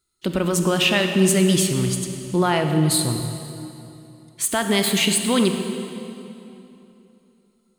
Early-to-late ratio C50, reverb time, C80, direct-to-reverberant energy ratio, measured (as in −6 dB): 6.0 dB, 3.0 s, 7.0 dB, 5.5 dB